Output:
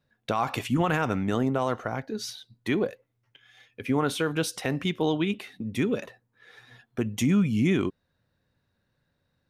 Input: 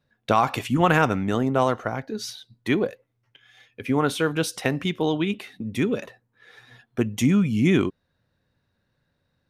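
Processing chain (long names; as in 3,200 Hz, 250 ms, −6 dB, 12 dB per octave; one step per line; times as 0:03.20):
brickwall limiter −13 dBFS, peak gain reduction 7 dB
level −2 dB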